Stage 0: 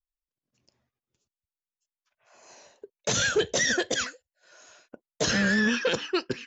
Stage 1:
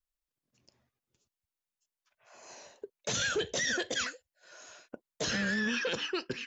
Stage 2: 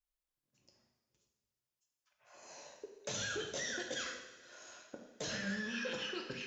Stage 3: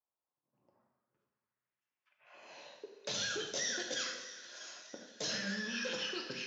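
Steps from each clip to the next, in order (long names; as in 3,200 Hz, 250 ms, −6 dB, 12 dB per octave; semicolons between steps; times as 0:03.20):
in parallel at +1.5 dB: downward compressor, threshold −33 dBFS, peak gain reduction 13 dB; on the sum: brickwall limiter −18.5 dBFS, peak gain reduction 7.5 dB; dynamic equaliser 2,900 Hz, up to +3 dB, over −40 dBFS, Q 0.86; level −5.5 dB
downward compressor, threshold −34 dBFS, peak gain reduction 7 dB; convolution reverb, pre-delay 3 ms, DRR 1 dB; level −5 dB
low-pass filter sweep 950 Hz → 5,400 Hz, 0:00.59–0:03.37; high-pass filter 140 Hz 12 dB per octave; echo with a time of its own for lows and highs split 1,000 Hz, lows 87 ms, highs 642 ms, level −15 dB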